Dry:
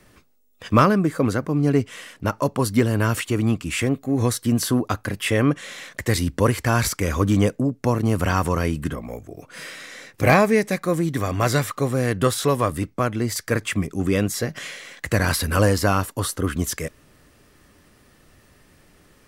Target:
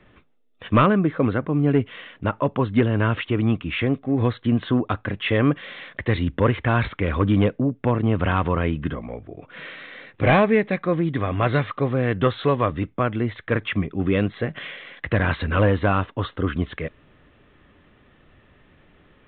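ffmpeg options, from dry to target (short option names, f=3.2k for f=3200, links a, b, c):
-af "volume=9.5dB,asoftclip=hard,volume=-9.5dB,aresample=8000,aresample=44100"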